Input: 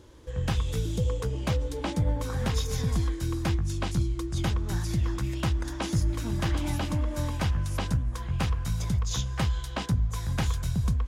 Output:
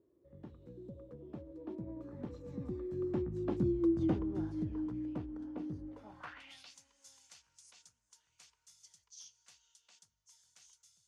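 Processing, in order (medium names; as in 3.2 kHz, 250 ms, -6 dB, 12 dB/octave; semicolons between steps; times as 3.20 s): Doppler pass-by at 3.87 s, 32 m/s, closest 14 m; band-pass sweep 320 Hz -> 6.7 kHz, 5.82–6.77 s; trim +7 dB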